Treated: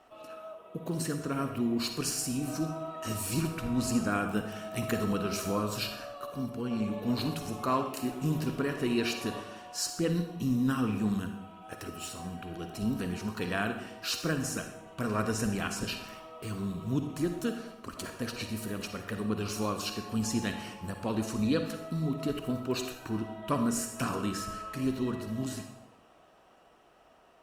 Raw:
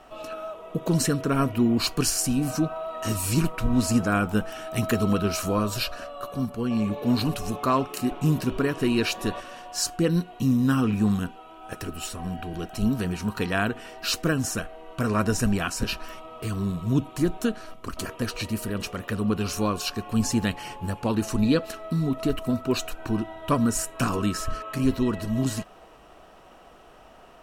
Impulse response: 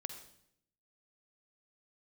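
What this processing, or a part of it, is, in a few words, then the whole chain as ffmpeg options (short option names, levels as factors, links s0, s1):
far-field microphone of a smart speaker: -filter_complex "[1:a]atrim=start_sample=2205[s0];[0:a][s0]afir=irnorm=-1:irlink=0,highpass=f=110:p=1,dynaudnorm=f=230:g=21:m=1.41,volume=0.473" -ar 48000 -c:a libopus -b:a 48k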